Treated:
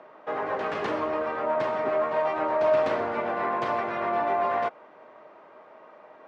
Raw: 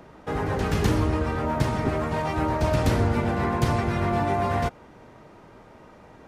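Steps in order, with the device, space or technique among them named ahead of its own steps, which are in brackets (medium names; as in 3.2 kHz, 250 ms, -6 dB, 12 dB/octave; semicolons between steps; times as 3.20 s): tin-can telephone (band-pass 470–2500 Hz; small resonant body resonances 620/1100 Hz, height 8 dB)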